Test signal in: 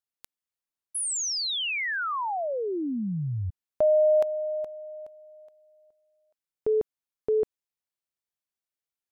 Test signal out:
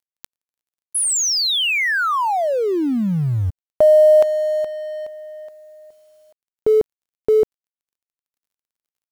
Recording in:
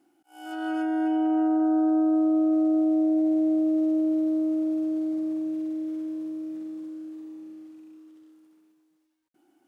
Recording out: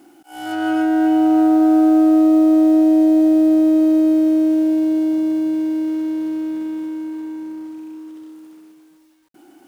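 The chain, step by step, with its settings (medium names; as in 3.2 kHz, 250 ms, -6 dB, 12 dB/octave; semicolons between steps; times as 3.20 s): companding laws mixed up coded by mu; trim +9 dB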